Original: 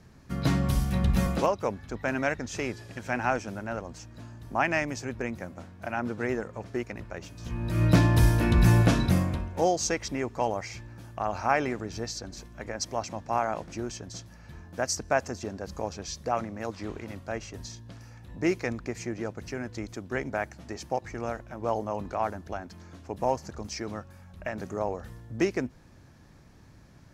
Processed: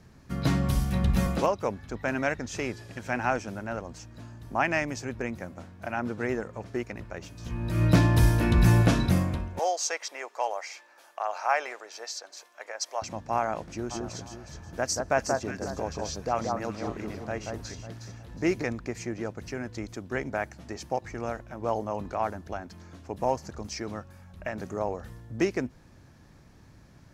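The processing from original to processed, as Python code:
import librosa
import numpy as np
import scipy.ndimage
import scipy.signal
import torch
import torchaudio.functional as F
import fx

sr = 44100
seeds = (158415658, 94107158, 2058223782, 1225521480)

y = fx.highpass(x, sr, hz=550.0, slope=24, at=(9.59, 13.02))
y = fx.echo_alternate(y, sr, ms=182, hz=1500.0, feedback_pct=54, wet_db=-2.5, at=(13.9, 18.62), fade=0.02)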